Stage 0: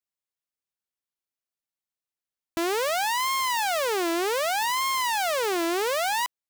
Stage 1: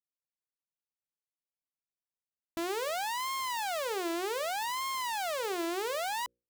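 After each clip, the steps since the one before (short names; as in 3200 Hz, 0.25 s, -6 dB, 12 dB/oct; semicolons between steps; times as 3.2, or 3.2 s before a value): Wiener smoothing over 25 samples; notches 60/120/180/240/300/360/420/480/540 Hz; gain -7 dB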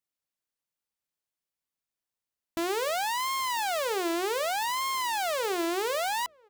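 outdoor echo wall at 170 m, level -29 dB; gain +4.5 dB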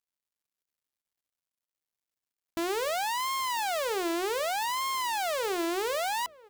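G.711 law mismatch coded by mu; gain -2 dB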